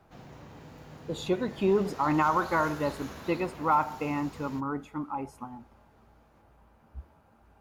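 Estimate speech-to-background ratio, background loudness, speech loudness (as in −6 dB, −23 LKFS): 16.0 dB, −45.5 LKFS, −29.5 LKFS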